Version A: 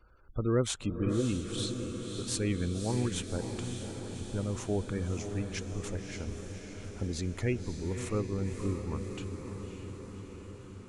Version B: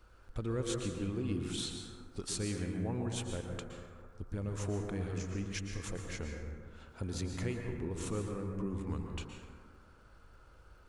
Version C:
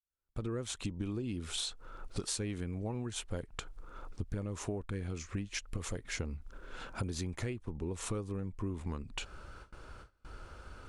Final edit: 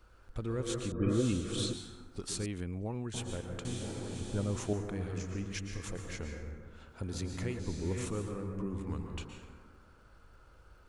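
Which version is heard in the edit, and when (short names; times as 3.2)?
B
0.92–1.73 from A
2.46–3.14 from C
3.65–4.73 from A
7.59–8.06 from A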